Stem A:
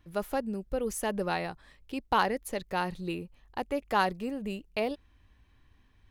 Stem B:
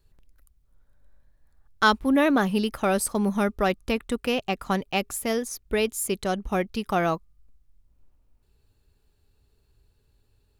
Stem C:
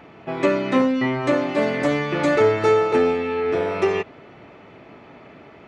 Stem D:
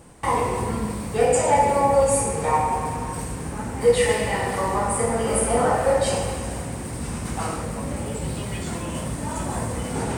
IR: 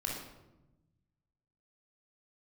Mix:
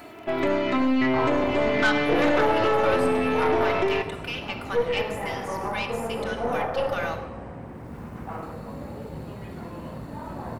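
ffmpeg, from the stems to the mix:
-filter_complex "[1:a]highpass=1.3k,aecho=1:1:3.4:0.65,acompressor=mode=upward:threshold=-44dB:ratio=2.5,volume=-2dB,asplit=2[a][b];[b]volume=-4.5dB[c];[2:a]aecho=1:1:3:0.65,alimiter=limit=-14dB:level=0:latency=1:release=178,volume=1.5dB,asplit=2[d][e];[e]volume=-12dB[f];[3:a]lowpass=1.6k,adelay=900,volume=-3.5dB[g];[4:a]atrim=start_sample=2205[h];[c][f]amix=inputs=2:normalize=0[i];[i][h]afir=irnorm=-1:irlink=0[j];[a][d][g][j]amix=inputs=4:normalize=0,acrossover=split=4000[k][l];[l]acompressor=threshold=-47dB:ratio=4:attack=1:release=60[m];[k][m]amix=inputs=2:normalize=0,lowshelf=f=70:g=-9.5,aeval=exprs='(tanh(5.62*val(0)+0.55)-tanh(0.55))/5.62':c=same"

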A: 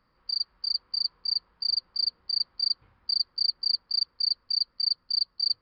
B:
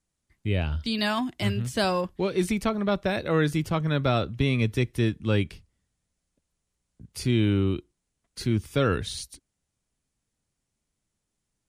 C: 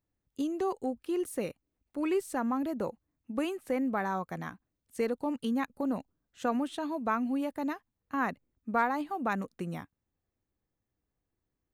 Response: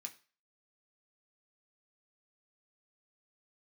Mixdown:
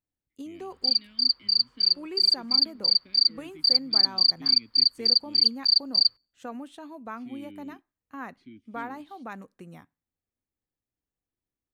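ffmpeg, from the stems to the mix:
-filter_complex "[0:a]highshelf=f=2.1k:g=9.5,adelay=550,volume=-2.5dB,asplit=2[a][b];[b]volume=-21.5dB[c];[1:a]asplit=3[d][e][f];[d]bandpass=f=270:t=q:w=8,volume=0dB[g];[e]bandpass=f=2.29k:t=q:w=8,volume=-6dB[h];[f]bandpass=f=3.01k:t=q:w=8,volume=-9dB[i];[g][h][i]amix=inputs=3:normalize=0,volume=-11.5dB[j];[2:a]volume=-8.5dB,asplit=3[k][l][m];[k]atrim=end=1.07,asetpts=PTS-STARTPTS,afade=t=out:st=1.066:d=0.004:c=hsin[n];[l]atrim=start=1.07:end=1.95,asetpts=PTS-STARTPTS,volume=0[o];[m]atrim=start=1.95,asetpts=PTS-STARTPTS,afade=t=in:d=0.004:c=hsin[p];[n][o][p]concat=n=3:v=0:a=1,asplit=2[q][r];[r]volume=-10dB[s];[3:a]atrim=start_sample=2205[t];[c][s]amix=inputs=2:normalize=0[u];[u][t]afir=irnorm=-1:irlink=0[v];[a][j][q][v]amix=inputs=4:normalize=0"

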